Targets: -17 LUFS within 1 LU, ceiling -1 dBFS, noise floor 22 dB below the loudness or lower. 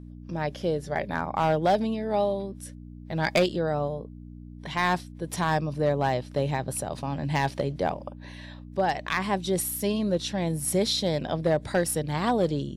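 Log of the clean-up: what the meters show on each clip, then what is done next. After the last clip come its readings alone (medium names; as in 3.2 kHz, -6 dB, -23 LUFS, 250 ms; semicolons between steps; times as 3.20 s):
clipped samples 0.4%; clipping level -15.5 dBFS; hum 60 Hz; highest harmonic 300 Hz; hum level -40 dBFS; loudness -27.5 LUFS; peak level -15.5 dBFS; loudness target -17.0 LUFS
-> clip repair -15.5 dBFS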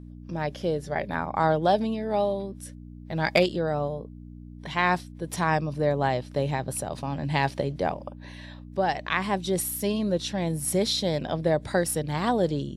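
clipped samples 0.0%; hum 60 Hz; highest harmonic 300 Hz; hum level -40 dBFS
-> de-hum 60 Hz, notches 5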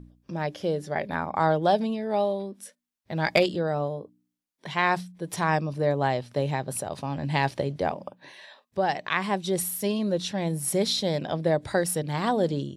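hum not found; loudness -27.0 LUFS; peak level -7.0 dBFS; loudness target -17.0 LUFS
-> trim +10 dB; peak limiter -1 dBFS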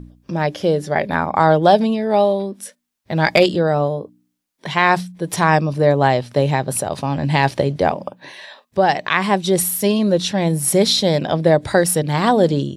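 loudness -17.5 LUFS; peak level -1.0 dBFS; noise floor -70 dBFS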